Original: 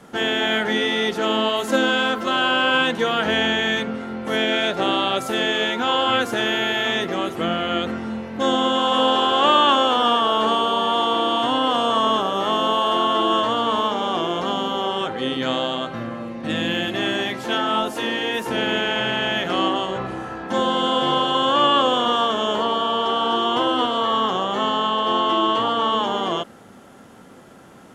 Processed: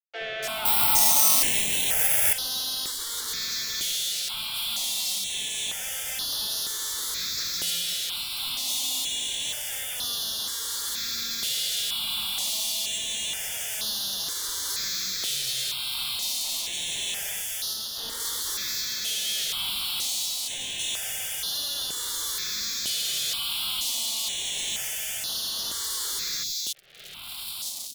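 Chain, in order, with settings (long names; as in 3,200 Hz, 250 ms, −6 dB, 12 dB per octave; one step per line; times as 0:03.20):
spectral envelope flattened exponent 0.3
automatic gain control gain up to 14.5 dB
brickwall limiter −7 dBFS, peak gain reduction 6.5 dB
rotating-speaker cabinet horn 0.8 Hz
0:17.44–0:17.91: tube saturation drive 29 dB, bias 0.55
high-pass filter sweep 620 Hz → 3,800 Hz, 0:00.87–0:01.88
fuzz pedal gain 32 dB, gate −36 dBFS
three-band delay without the direct sound mids, lows, highs 70/290 ms, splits 330/3,200 Hz
0:00.65–0:02.33: bad sample-rate conversion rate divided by 6×, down none, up zero stuff
step-sequenced phaser 2.1 Hz 260–7,800 Hz
level −10.5 dB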